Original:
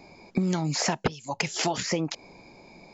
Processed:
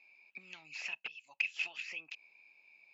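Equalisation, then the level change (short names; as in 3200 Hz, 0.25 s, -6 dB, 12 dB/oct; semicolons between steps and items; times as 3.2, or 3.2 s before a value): band-pass 2600 Hz, Q 19; +7.0 dB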